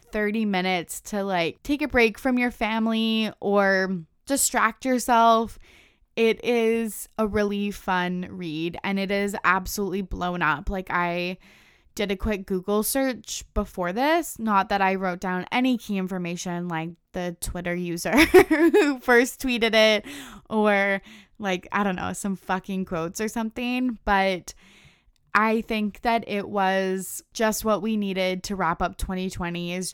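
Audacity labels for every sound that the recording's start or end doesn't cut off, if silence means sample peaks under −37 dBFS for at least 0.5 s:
6.170000	11.350000	sound
11.970000	24.510000	sound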